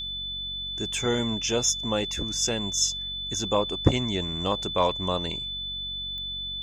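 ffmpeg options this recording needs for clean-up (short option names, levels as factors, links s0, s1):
-af "adeclick=t=4,bandreject=f=46.5:t=h:w=4,bandreject=f=93:t=h:w=4,bandreject=f=139.5:t=h:w=4,bandreject=f=186:t=h:w=4,bandreject=f=232.5:t=h:w=4,bandreject=f=3500:w=30"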